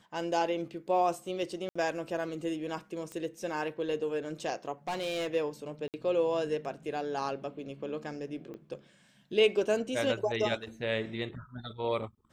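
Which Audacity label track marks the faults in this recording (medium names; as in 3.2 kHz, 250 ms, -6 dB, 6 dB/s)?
1.690000	1.750000	dropout 65 ms
3.120000	3.120000	pop -27 dBFS
4.880000	5.350000	clipped -29.5 dBFS
5.880000	5.940000	dropout 58 ms
8.540000	8.540000	pop -33 dBFS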